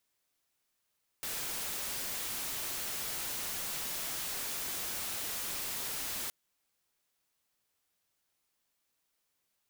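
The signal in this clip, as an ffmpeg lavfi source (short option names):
-f lavfi -i "anoisesrc=c=white:a=0.0231:d=5.07:r=44100:seed=1"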